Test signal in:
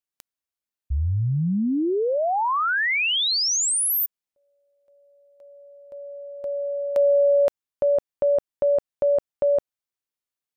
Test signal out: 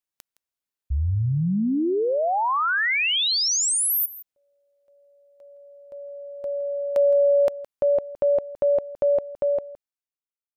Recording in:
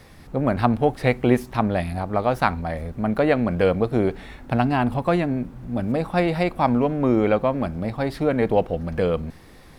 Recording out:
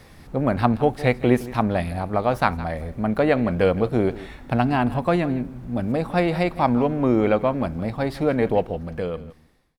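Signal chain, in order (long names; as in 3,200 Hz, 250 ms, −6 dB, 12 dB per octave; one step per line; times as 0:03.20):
fade-out on the ending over 1.42 s
on a send: single-tap delay 165 ms −17 dB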